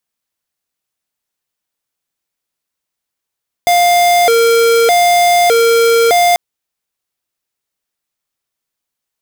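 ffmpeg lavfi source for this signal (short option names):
-f lavfi -i "aevalsrc='0.335*(2*lt(mod((582*t+120/0.82*(0.5-abs(mod(0.82*t,1)-0.5))),1),0.5)-1)':d=2.69:s=44100"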